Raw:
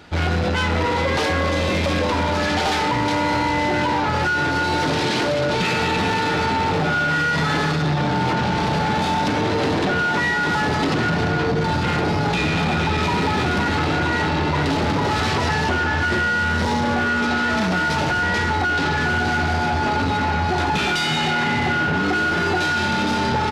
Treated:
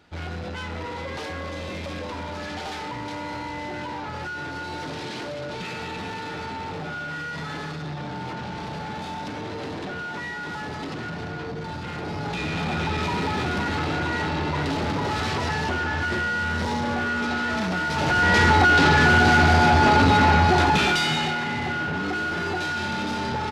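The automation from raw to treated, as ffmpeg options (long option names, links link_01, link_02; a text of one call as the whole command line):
ffmpeg -i in.wav -af "volume=4dB,afade=type=in:start_time=11.92:duration=0.92:silence=0.446684,afade=type=in:start_time=17.92:duration=0.52:silence=0.334965,afade=type=out:start_time=20.31:duration=1.1:silence=0.281838" out.wav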